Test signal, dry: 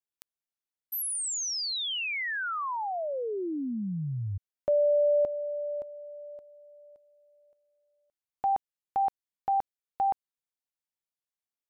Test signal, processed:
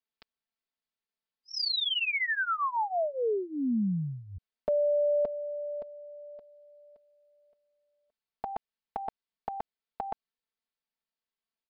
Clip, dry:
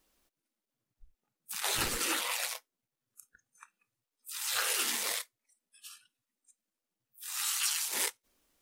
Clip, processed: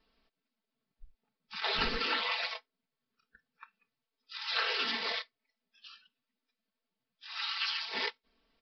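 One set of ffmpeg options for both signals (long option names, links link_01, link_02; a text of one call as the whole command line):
ffmpeg -i in.wav -af "aecho=1:1:4.5:0.84,aresample=11025,aresample=44100" out.wav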